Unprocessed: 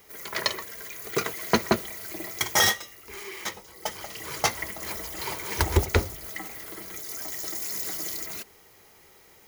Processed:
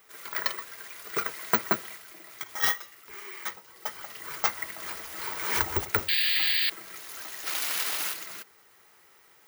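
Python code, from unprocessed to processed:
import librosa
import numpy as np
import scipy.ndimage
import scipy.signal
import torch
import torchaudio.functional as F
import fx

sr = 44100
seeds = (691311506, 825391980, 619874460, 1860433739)

y = fx.highpass(x, sr, hz=110.0, slope=6)
y = fx.peak_eq(y, sr, hz=1400.0, db=10.0, octaves=1.2)
y = fx.level_steps(y, sr, step_db=14, at=(1.96, 2.62), fade=0.02)
y = fx.spec_paint(y, sr, seeds[0], shape='noise', start_s=6.08, length_s=0.62, low_hz=1600.0, high_hz=4900.0, level_db=-19.0)
y = fx.high_shelf(y, sr, hz=8100.0, db=10.0, at=(7.45, 8.12), fade=0.02)
y = (np.kron(y[::2], np.eye(2)[0]) * 2)[:len(y)]
y = fx.pre_swell(y, sr, db_per_s=52.0, at=(4.72, 5.76))
y = y * 10.0 ** (-9.0 / 20.0)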